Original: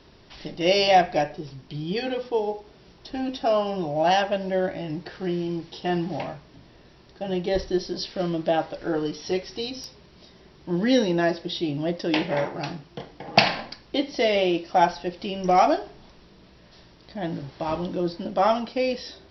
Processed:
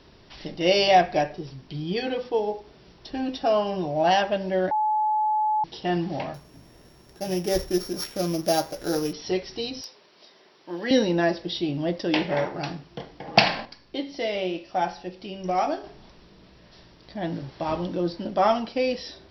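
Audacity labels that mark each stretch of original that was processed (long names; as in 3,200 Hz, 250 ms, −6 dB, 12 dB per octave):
4.710000	5.640000	beep over 857 Hz −20 dBFS
6.340000	9.130000	samples sorted by size in blocks of 8 samples
9.810000	10.910000	high-pass filter 450 Hz
13.650000	15.840000	tuned comb filter 93 Hz, decay 0.56 s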